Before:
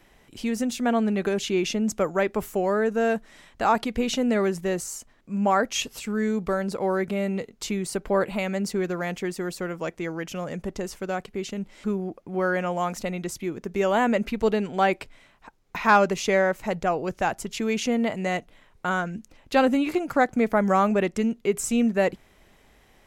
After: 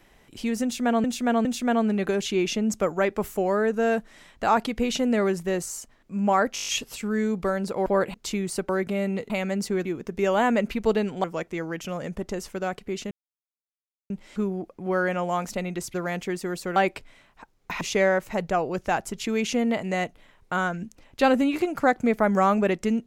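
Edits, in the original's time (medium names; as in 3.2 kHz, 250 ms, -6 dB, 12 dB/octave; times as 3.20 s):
0.63–1.04 s: loop, 3 plays
5.72 s: stutter 0.02 s, 8 plays
6.90–7.51 s: swap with 8.06–8.34 s
8.89–9.71 s: swap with 13.42–14.81 s
11.58 s: insert silence 0.99 s
15.86–16.14 s: delete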